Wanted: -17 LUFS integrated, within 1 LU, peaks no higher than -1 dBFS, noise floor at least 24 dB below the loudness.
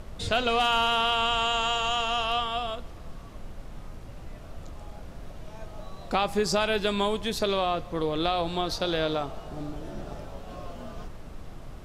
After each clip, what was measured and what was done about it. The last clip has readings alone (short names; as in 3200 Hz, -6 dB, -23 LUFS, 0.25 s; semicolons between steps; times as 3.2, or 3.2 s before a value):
noise floor -43 dBFS; noise floor target -51 dBFS; loudness -26.5 LUFS; peak -13.5 dBFS; loudness target -17.0 LUFS
-> noise print and reduce 8 dB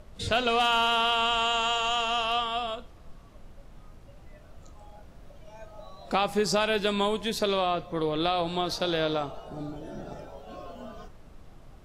noise floor -50 dBFS; noise floor target -51 dBFS
-> noise print and reduce 6 dB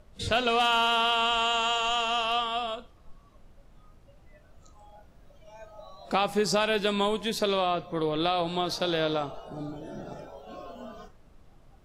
noise floor -56 dBFS; loudness -26.5 LUFS; peak -13.5 dBFS; loudness target -17.0 LUFS
-> gain +9.5 dB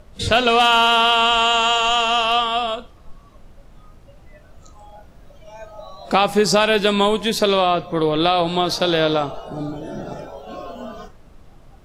loudness -17.0 LUFS; peak -4.0 dBFS; noise floor -46 dBFS